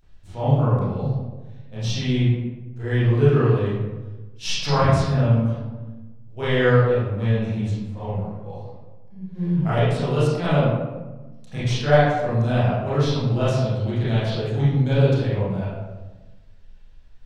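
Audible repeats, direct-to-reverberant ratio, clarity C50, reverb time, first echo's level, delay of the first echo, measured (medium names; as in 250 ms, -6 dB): no echo, -12.0 dB, -2.5 dB, 1.2 s, no echo, no echo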